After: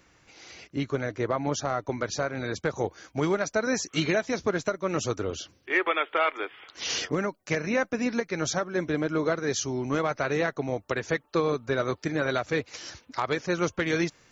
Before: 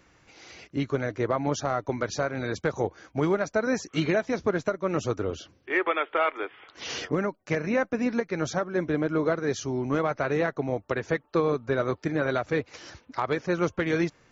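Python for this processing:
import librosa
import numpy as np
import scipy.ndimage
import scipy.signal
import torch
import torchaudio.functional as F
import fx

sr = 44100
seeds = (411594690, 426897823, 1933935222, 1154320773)

y = fx.high_shelf(x, sr, hz=3000.0, db=fx.steps((0.0, 4.5), (2.8, 11.0)))
y = y * 10.0 ** (-1.5 / 20.0)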